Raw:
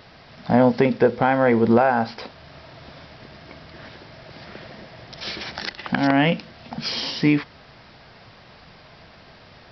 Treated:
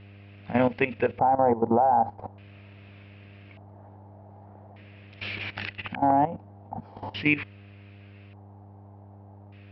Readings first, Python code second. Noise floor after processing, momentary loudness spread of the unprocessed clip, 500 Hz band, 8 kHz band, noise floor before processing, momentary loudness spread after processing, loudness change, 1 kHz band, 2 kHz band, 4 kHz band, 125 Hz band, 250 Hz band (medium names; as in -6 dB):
-48 dBFS, 23 LU, -6.0 dB, no reading, -48 dBFS, 19 LU, -5.0 dB, 0.0 dB, -5.5 dB, -11.5 dB, -8.0 dB, -8.5 dB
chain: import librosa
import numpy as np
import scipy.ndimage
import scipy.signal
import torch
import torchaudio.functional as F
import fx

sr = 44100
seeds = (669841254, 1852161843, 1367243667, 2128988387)

y = fx.filter_lfo_lowpass(x, sr, shape='square', hz=0.42, low_hz=830.0, high_hz=2600.0, q=5.7)
y = fx.dmg_buzz(y, sr, base_hz=100.0, harmonics=7, level_db=-33.0, tilt_db=-8, odd_only=False)
y = fx.level_steps(y, sr, step_db=14)
y = y * librosa.db_to_amplitude(-6.0)